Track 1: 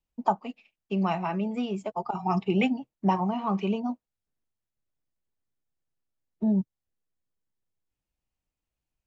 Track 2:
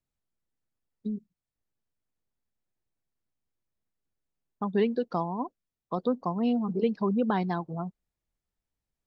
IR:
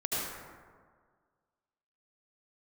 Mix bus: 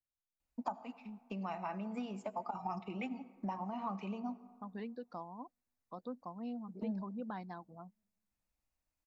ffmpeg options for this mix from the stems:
-filter_complex "[0:a]bass=frequency=250:gain=-3,treble=frequency=4000:gain=-1,acompressor=threshold=-36dB:ratio=6,adelay=400,volume=-0.5dB,asplit=2[link_01][link_02];[link_02]volume=-22dB[link_03];[1:a]volume=-14.5dB[link_04];[2:a]atrim=start_sample=2205[link_05];[link_03][link_05]afir=irnorm=-1:irlink=0[link_06];[link_01][link_04][link_06]amix=inputs=3:normalize=0,equalizer=frequency=160:width_type=o:width=0.33:gain=-8,equalizer=frequency=400:width_type=o:width=0.33:gain=-11,equalizer=frequency=3150:width_type=o:width=0.33:gain=-8"

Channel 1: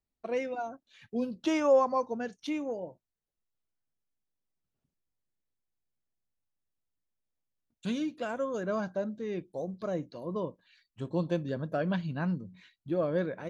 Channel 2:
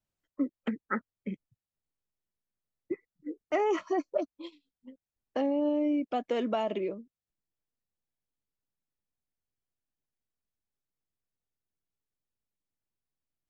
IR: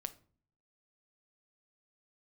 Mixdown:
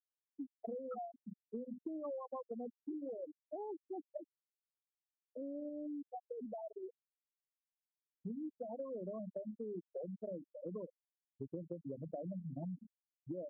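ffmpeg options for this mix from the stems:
-filter_complex "[0:a]bandreject=frequency=50:width_type=h:width=6,bandreject=frequency=100:width_type=h:width=6,bandreject=frequency=150:width_type=h:width=6,bandreject=frequency=200:width_type=h:width=6,bandreject=frequency=250:width_type=h:width=6,bandreject=frequency=300:width_type=h:width=6,acrossover=split=160|1100[link_01][link_02][link_03];[link_01]acompressor=threshold=-51dB:ratio=4[link_04];[link_02]acompressor=threshold=-34dB:ratio=4[link_05];[link_03]acompressor=threshold=-59dB:ratio=4[link_06];[link_04][link_05][link_06]amix=inputs=3:normalize=0,adelay=400,volume=-0.5dB[link_07];[1:a]acompressor=mode=upward:threshold=-32dB:ratio=2.5,volume=-12dB[link_08];[link_07][link_08]amix=inputs=2:normalize=0,afftfilt=real='re*gte(hypot(re,im),0.0562)':imag='im*gte(hypot(re,im),0.0562)':win_size=1024:overlap=0.75,acompressor=threshold=-41dB:ratio=5"

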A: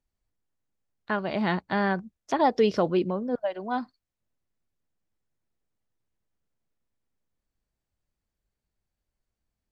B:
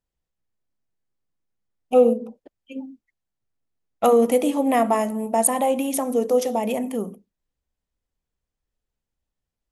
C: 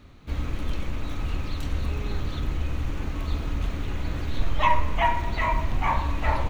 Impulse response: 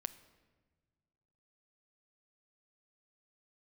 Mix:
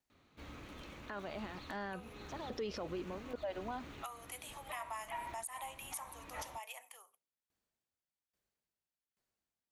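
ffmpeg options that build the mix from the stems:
-filter_complex "[0:a]alimiter=limit=-20.5dB:level=0:latency=1:release=27,aeval=exprs='val(0)*pow(10,-21*if(lt(mod(1.2*n/s,1),2*abs(1.2)/1000),1-mod(1.2*n/s,1)/(2*abs(1.2)/1000),(mod(1.2*n/s,1)-2*abs(1.2)/1000)/(1-2*abs(1.2)/1000))/20)':channel_layout=same,volume=3dB[link_01];[1:a]acompressor=threshold=-17dB:ratio=6,highpass=frequency=1000:width=0.5412,highpass=frequency=1000:width=1.3066,volume=-12dB,asplit=2[link_02][link_03];[2:a]adelay=100,volume=-12dB[link_04];[link_03]apad=whole_len=290824[link_05];[link_04][link_05]sidechaincompress=threshold=-53dB:ratio=4:attack=11:release=321[link_06];[link_01][link_02][link_06]amix=inputs=3:normalize=0,highpass=frequency=310:poles=1,asoftclip=type=tanh:threshold=-19dB,alimiter=level_in=8dB:limit=-24dB:level=0:latency=1:release=117,volume=-8dB"

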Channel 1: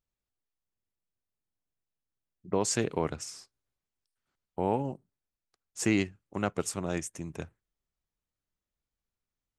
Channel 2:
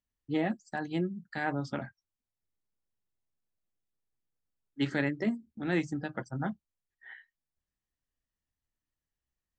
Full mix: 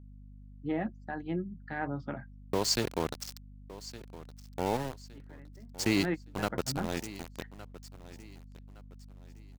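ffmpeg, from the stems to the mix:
ffmpeg -i stem1.wav -i stem2.wav -filter_complex "[0:a]acrossover=split=8200[link_01][link_02];[link_02]acompressor=threshold=-54dB:ratio=4:attack=1:release=60[link_03];[link_01][link_03]amix=inputs=2:normalize=0,equalizer=frequency=4500:width=2.8:gain=15,aeval=exprs='val(0)*gte(abs(val(0)),0.0282)':channel_layout=same,volume=-2dB,asplit=3[link_04][link_05][link_06];[link_05]volume=-17dB[link_07];[1:a]lowpass=2200,adelay=350,volume=-2.5dB[link_08];[link_06]apad=whole_len=438023[link_09];[link_08][link_09]sidechaingate=range=-23dB:threshold=-42dB:ratio=16:detection=peak[link_10];[link_07]aecho=0:1:1164|2328|3492|4656|5820:1|0.33|0.109|0.0359|0.0119[link_11];[link_04][link_10][link_11]amix=inputs=3:normalize=0,aeval=exprs='val(0)+0.00355*(sin(2*PI*50*n/s)+sin(2*PI*2*50*n/s)/2+sin(2*PI*3*50*n/s)/3+sin(2*PI*4*50*n/s)/4+sin(2*PI*5*50*n/s)/5)':channel_layout=same" out.wav

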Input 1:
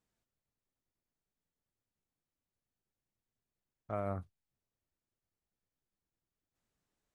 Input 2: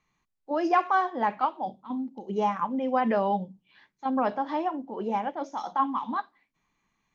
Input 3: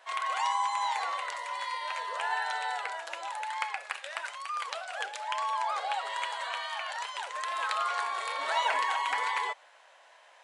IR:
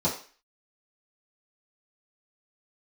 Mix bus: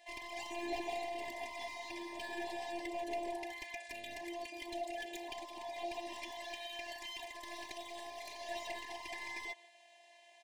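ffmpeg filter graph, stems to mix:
-filter_complex "[0:a]volume=-9.5dB,asplit=2[link_01][link_02];[1:a]volume=-8.5dB,asplit=2[link_03][link_04];[link_04]volume=-4dB[link_05];[2:a]acrossover=split=460[link_06][link_07];[link_07]acompressor=threshold=-33dB:ratio=2[link_08];[link_06][link_08]amix=inputs=2:normalize=0,volume=1dB,asplit=2[link_09][link_10];[link_10]volume=-24dB[link_11];[link_02]apad=whole_len=315009[link_12];[link_03][link_12]sidechaincompress=threshold=-59dB:ratio=8:attack=16:release=1450[link_13];[link_05][link_11]amix=inputs=2:normalize=0,aecho=0:1:151:1[link_14];[link_01][link_13][link_09][link_14]amix=inputs=4:normalize=0,afftfilt=real='hypot(re,im)*cos(PI*b)':imag='0':win_size=512:overlap=0.75,asoftclip=type=hard:threshold=-33.5dB,asuperstop=centerf=1300:order=12:qfactor=1.6"

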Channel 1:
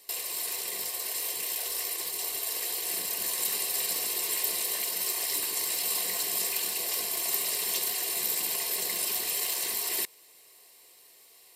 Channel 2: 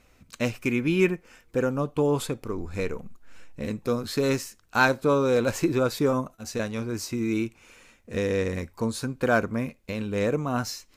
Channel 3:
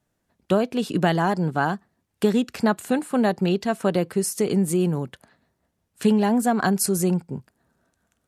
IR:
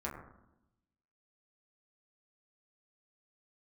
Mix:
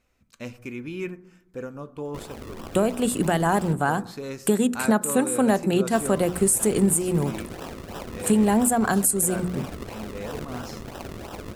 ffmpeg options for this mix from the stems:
-filter_complex "[0:a]aeval=exprs='val(0)*sin(2*PI*1500*n/s)':channel_layout=same,acrusher=samples=39:mix=1:aa=0.000001:lfo=1:lforange=39:lforate=3,adelay=2050,volume=-5dB,asplit=3[link_01][link_02][link_03];[link_01]atrim=end=3.73,asetpts=PTS-STARTPTS,afade=type=out:start_time=3.726:duration=0.004:curve=hsin[link_04];[link_02]atrim=start=3.73:end=5.92,asetpts=PTS-STARTPTS,volume=0[link_05];[link_03]atrim=start=5.92,asetpts=PTS-STARTPTS,afade=type=in:duration=0.004:curve=hsin[link_06];[link_04][link_05][link_06]concat=n=3:v=0:a=1,asplit=2[link_07][link_08];[link_08]volume=-11.5dB[link_09];[1:a]volume=-11.5dB,asplit=2[link_10][link_11];[link_11]volume=-13dB[link_12];[2:a]highshelf=frequency=6600:width_type=q:width=3:gain=8,bandreject=frequency=60:width_type=h:width=6,bandreject=frequency=120:width_type=h:width=6,bandreject=frequency=180:width_type=h:width=6,bandreject=frequency=240:width_type=h:width=6,bandreject=frequency=300:width_type=h:width=6,bandreject=frequency=360:width_type=h:width=6,adelay=2250,volume=1dB,asplit=2[link_13][link_14];[link_14]volume=-19.5dB[link_15];[3:a]atrim=start_sample=2205[link_16];[link_09][link_12][link_15]amix=inputs=3:normalize=0[link_17];[link_17][link_16]afir=irnorm=-1:irlink=0[link_18];[link_07][link_10][link_13][link_18]amix=inputs=4:normalize=0,alimiter=limit=-9.5dB:level=0:latency=1:release=224"

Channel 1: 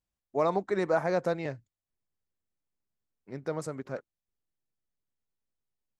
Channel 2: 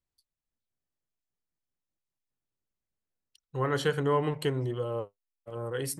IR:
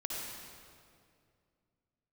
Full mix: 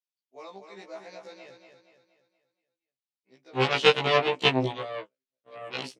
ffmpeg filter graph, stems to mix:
-filter_complex "[0:a]volume=-14.5dB,asplit=2[link_01][link_02];[link_02]volume=-6.5dB[link_03];[1:a]aemphasis=mode=reproduction:type=bsi,dynaudnorm=framelen=220:gausssize=3:maxgain=10.5dB,aeval=exprs='0.668*(cos(1*acos(clip(val(0)/0.668,-1,1)))-cos(1*PI/2))+0.211*(cos(3*acos(clip(val(0)/0.668,-1,1)))-cos(3*PI/2))+0.0075*(cos(7*acos(clip(val(0)/0.668,-1,1)))-cos(7*PI/2))+0.0211*(cos(8*acos(clip(val(0)/0.668,-1,1)))-cos(8*PI/2))':channel_layout=same,volume=1.5dB[link_04];[link_03]aecho=0:1:236|472|708|944|1180|1416:1|0.45|0.202|0.0911|0.041|0.0185[link_05];[link_01][link_04][link_05]amix=inputs=3:normalize=0,aexciter=amount=4.3:drive=7.8:freq=2300,highpass=250,lowpass=4100,afftfilt=real='re*1.73*eq(mod(b,3),0)':imag='im*1.73*eq(mod(b,3),0)':win_size=2048:overlap=0.75"

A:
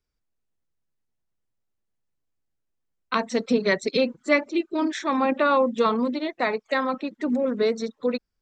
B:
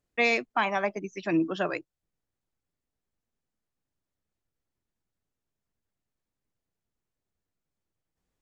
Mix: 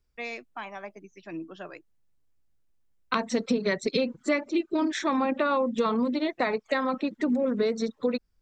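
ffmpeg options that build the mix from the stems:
ffmpeg -i stem1.wav -i stem2.wav -filter_complex "[0:a]lowshelf=frequency=130:gain=9,volume=2dB[link_01];[1:a]volume=-12dB[link_02];[link_01][link_02]amix=inputs=2:normalize=0,acompressor=threshold=-23dB:ratio=4" out.wav

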